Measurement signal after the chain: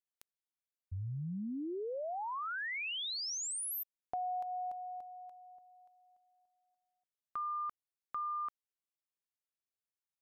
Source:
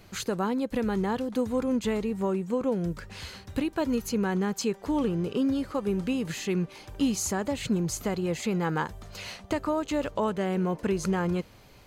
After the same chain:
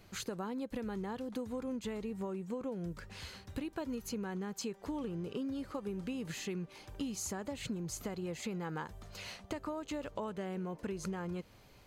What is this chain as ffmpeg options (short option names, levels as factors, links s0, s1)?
-af "acompressor=threshold=0.0355:ratio=6,volume=0.473"